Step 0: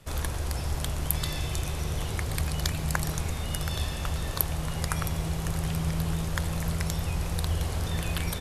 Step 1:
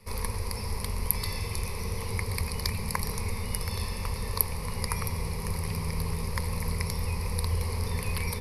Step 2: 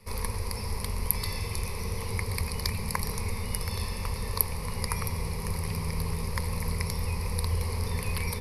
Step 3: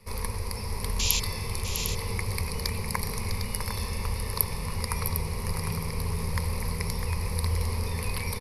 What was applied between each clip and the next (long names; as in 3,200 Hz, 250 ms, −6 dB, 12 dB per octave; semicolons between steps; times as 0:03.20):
EQ curve with evenly spaced ripples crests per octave 0.88, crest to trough 15 dB; level −3.5 dB
no processing that can be heard
sound drawn into the spectrogram noise, 0:00.99–0:01.20, 2,300–7,500 Hz −28 dBFS; multi-tap delay 652/753 ms −9/−8.5 dB